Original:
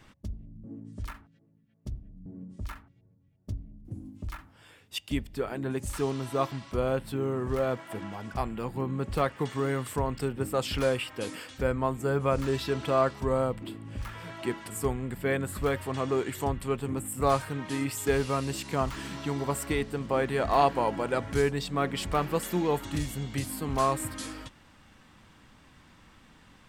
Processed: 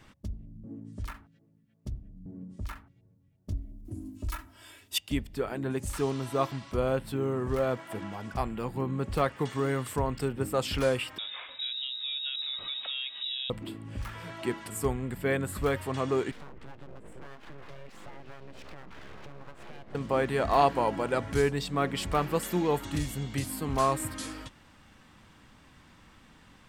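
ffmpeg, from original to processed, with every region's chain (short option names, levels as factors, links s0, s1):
-filter_complex "[0:a]asettb=1/sr,asplit=3[s0][s1][s2];[s0]atrim=end=3.514[s3];[s1]atrim=start=3.51:end=4.98,asetpts=PTS-STARTPTS,afade=t=in:d=0.004:c=qsin,afade=t=out:st=1.466:d=0.004:c=qsin,aemphasis=mode=production:type=cd,aecho=1:1:3.1:0.85,atrim=end_sample=64827[s4];[s2]atrim=start=4.976[s5];[s3][s4]acrossfade=d=0.004:c1=hsin:c2=qsin[s6];[s6][s5]acrossfade=d=0.004:c1=qsin:c2=hsin,asettb=1/sr,asplit=3[s7][s8][s9];[s7]atrim=end=11.184[s10];[s8]atrim=start=11.18:end=13.5,asetpts=PTS-STARTPTS,afade=t=in:d=0.004:c=qsin,afade=t=out:st=2.316:d=0.004:c=qsin,lowshelf=f=170:g=11,acompressor=threshold=0.02:ratio=4:attack=3.2:release=140:knee=1:detection=peak,lowpass=f=3300:t=q:w=0.5098,lowpass=f=3300:t=q:w=0.6013,lowpass=f=3300:t=q:w=0.9,lowpass=f=3300:t=q:w=2.563,afreqshift=-3900[s11];[s9]atrim=start=13.496[s12];[s10][s11]acrossfade=d=0.004:c1=hsin:c2=qsin[s13];[s13][s12]acrossfade=d=0.004:c1=qsin:c2=hsin,asettb=1/sr,asplit=3[s14][s15][s16];[s14]atrim=end=16.314[s17];[s15]atrim=start=16.31:end=19.95,asetpts=PTS-STARTPTS,afade=t=in:d=0.004:c=qsin,afade=t=out:st=3.636:d=0.004:c=qsin,lowpass=2100,acompressor=threshold=0.0112:ratio=16:attack=3.2:release=140:knee=1:detection=peak,aeval=exprs='abs(val(0))':c=same[s18];[s16]atrim=start=19.946[s19];[s17][s18]acrossfade=d=0.004:c1=hsin:c2=qsin[s20];[s20][s19]acrossfade=d=0.004:c1=qsin:c2=hsin"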